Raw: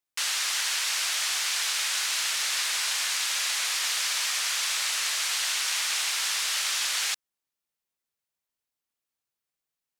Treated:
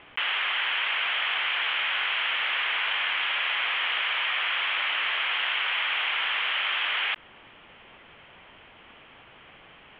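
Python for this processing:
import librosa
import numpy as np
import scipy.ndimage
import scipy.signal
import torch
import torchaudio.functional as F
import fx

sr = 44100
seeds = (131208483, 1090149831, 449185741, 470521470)

y = scipy.signal.sosfilt(scipy.signal.cheby1(6, 1.0, 3200.0, 'lowpass', fs=sr, output='sos'), x)
y = fx.env_flatten(y, sr, amount_pct=70)
y = F.gain(torch.from_numpy(y), 5.0).numpy()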